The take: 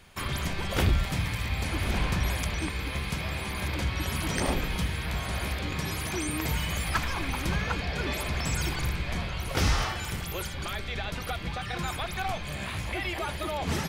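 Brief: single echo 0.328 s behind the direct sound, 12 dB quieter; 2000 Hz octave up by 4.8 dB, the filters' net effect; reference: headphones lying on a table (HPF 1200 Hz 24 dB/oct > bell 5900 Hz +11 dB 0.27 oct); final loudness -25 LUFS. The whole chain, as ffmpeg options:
-af "highpass=f=1.2k:w=0.5412,highpass=f=1.2k:w=1.3066,equalizer=f=2k:t=o:g=6,equalizer=f=5.9k:t=o:w=0.27:g=11,aecho=1:1:328:0.251,volume=4.5dB"

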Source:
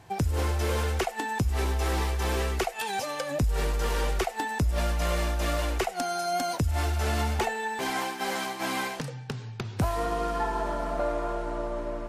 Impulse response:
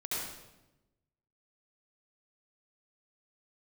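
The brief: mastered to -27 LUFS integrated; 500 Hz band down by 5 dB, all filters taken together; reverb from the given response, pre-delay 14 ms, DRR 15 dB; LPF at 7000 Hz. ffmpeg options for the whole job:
-filter_complex "[0:a]lowpass=7k,equalizer=f=500:t=o:g=-7,asplit=2[a][b];[1:a]atrim=start_sample=2205,adelay=14[c];[b][c]afir=irnorm=-1:irlink=0,volume=-19dB[d];[a][d]amix=inputs=2:normalize=0,volume=3.5dB"

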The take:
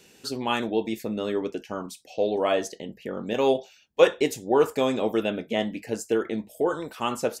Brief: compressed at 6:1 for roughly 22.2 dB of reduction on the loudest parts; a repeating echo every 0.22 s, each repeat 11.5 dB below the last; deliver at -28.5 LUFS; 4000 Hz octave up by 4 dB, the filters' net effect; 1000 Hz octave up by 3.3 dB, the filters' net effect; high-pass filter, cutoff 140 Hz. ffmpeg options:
-af "highpass=140,equalizer=f=1k:t=o:g=4,equalizer=f=4k:t=o:g=5,acompressor=threshold=-35dB:ratio=6,aecho=1:1:220|440|660:0.266|0.0718|0.0194,volume=10.5dB"

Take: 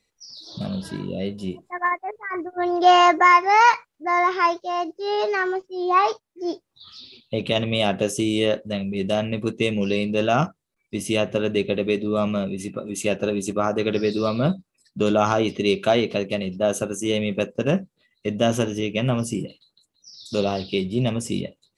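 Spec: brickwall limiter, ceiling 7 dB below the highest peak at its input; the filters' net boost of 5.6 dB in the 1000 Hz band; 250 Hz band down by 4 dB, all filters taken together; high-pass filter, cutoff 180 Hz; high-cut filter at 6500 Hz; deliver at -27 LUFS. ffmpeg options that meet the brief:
-af "highpass=180,lowpass=6.5k,equalizer=f=250:t=o:g=-4.5,equalizer=f=1k:t=o:g=7,volume=-6dB,alimiter=limit=-11.5dB:level=0:latency=1"

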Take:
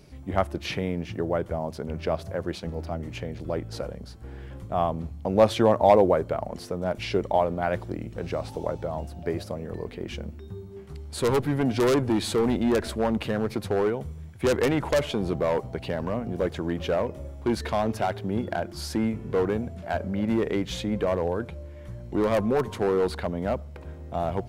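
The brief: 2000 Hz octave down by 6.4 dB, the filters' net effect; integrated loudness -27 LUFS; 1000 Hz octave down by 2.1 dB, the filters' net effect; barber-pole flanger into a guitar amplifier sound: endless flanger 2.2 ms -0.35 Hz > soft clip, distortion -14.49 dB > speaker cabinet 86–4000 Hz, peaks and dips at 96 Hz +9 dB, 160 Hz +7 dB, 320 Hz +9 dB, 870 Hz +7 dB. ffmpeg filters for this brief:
-filter_complex "[0:a]equalizer=f=1k:t=o:g=-7.5,equalizer=f=2k:t=o:g=-6,asplit=2[a][b];[b]adelay=2.2,afreqshift=-0.35[c];[a][c]amix=inputs=2:normalize=1,asoftclip=threshold=-22.5dB,highpass=86,equalizer=f=96:t=q:w=4:g=9,equalizer=f=160:t=q:w=4:g=7,equalizer=f=320:t=q:w=4:g=9,equalizer=f=870:t=q:w=4:g=7,lowpass=f=4k:w=0.5412,lowpass=f=4k:w=1.3066,volume=3dB"

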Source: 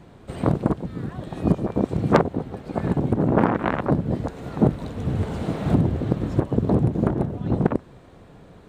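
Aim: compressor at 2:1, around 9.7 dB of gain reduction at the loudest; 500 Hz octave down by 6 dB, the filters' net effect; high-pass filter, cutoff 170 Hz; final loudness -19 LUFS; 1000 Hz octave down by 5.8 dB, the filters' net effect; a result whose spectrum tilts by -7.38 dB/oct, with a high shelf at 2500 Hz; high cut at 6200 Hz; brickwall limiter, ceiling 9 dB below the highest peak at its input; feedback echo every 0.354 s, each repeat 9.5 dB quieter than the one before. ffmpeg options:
-af "highpass=170,lowpass=6.2k,equalizer=f=500:t=o:g=-6.5,equalizer=f=1k:t=o:g=-4,highshelf=f=2.5k:g=-7.5,acompressor=threshold=-35dB:ratio=2,alimiter=level_in=1.5dB:limit=-24dB:level=0:latency=1,volume=-1.5dB,aecho=1:1:354|708|1062|1416:0.335|0.111|0.0365|0.012,volume=18dB"

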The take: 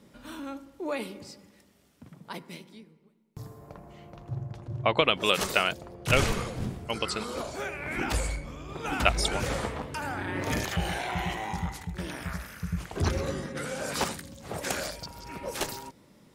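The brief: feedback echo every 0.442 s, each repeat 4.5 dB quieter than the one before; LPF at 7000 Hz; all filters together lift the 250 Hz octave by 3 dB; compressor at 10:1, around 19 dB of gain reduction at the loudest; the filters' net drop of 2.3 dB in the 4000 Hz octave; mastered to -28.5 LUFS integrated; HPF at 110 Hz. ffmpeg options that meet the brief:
-af "highpass=110,lowpass=7k,equalizer=f=250:t=o:g=4.5,equalizer=f=4k:t=o:g=-3,acompressor=threshold=-38dB:ratio=10,aecho=1:1:442|884|1326|1768|2210|2652|3094|3536|3978:0.596|0.357|0.214|0.129|0.0772|0.0463|0.0278|0.0167|0.01,volume=13dB"

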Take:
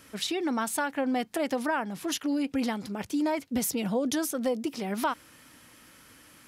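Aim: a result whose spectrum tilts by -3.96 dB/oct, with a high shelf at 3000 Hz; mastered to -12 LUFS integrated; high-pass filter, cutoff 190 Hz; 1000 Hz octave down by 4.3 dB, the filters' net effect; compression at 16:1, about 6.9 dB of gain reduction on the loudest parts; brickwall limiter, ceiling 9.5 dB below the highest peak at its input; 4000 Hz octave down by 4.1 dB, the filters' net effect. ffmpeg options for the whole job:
-af "highpass=190,equalizer=f=1k:t=o:g=-5.5,highshelf=f=3k:g=3.5,equalizer=f=4k:t=o:g=-8,acompressor=threshold=-32dB:ratio=16,volume=28dB,alimiter=limit=-4dB:level=0:latency=1"

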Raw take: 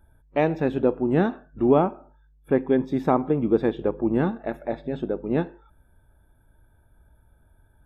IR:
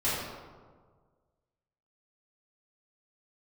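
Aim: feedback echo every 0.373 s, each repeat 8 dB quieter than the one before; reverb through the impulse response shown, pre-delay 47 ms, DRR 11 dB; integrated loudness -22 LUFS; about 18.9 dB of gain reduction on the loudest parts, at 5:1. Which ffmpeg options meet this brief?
-filter_complex "[0:a]acompressor=threshold=-36dB:ratio=5,aecho=1:1:373|746|1119|1492|1865:0.398|0.159|0.0637|0.0255|0.0102,asplit=2[a][b];[1:a]atrim=start_sample=2205,adelay=47[c];[b][c]afir=irnorm=-1:irlink=0,volume=-21.5dB[d];[a][d]amix=inputs=2:normalize=0,volume=17dB"

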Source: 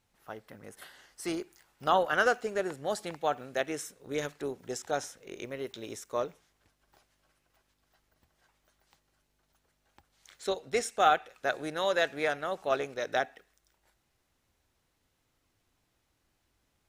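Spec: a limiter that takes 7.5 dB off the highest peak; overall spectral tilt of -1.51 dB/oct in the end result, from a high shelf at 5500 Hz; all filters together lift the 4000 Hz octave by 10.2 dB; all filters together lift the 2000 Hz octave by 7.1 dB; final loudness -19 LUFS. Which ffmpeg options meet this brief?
-af "equalizer=f=2k:t=o:g=7.5,equalizer=f=4k:t=o:g=7,highshelf=f=5.5k:g=8,volume=10.5dB,alimiter=limit=-2.5dB:level=0:latency=1"

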